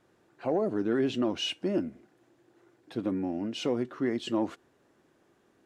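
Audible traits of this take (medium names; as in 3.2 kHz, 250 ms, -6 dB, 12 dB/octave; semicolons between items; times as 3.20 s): noise floor -67 dBFS; spectral tilt -4.5 dB/octave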